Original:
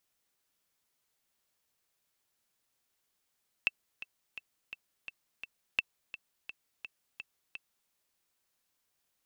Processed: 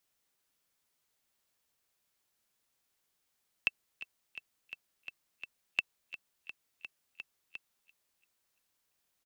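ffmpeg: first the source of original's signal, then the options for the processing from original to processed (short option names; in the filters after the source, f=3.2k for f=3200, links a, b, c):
-f lavfi -i "aevalsrc='pow(10,(-13.5-15*gte(mod(t,6*60/170),60/170))/20)*sin(2*PI*2660*mod(t,60/170))*exp(-6.91*mod(t,60/170)/0.03)':d=4.23:s=44100"
-filter_complex "[0:a]acrossover=split=310|780|1800[a][b][c][d];[d]asplit=2[e][f];[f]adelay=341,lowpass=f=3.5k:p=1,volume=-17.5dB,asplit=2[g][h];[h]adelay=341,lowpass=f=3.5k:p=1,volume=0.44,asplit=2[i][j];[j]adelay=341,lowpass=f=3.5k:p=1,volume=0.44,asplit=2[k][l];[l]adelay=341,lowpass=f=3.5k:p=1,volume=0.44[m];[e][g][i][k][m]amix=inputs=5:normalize=0[n];[a][b][c][n]amix=inputs=4:normalize=0"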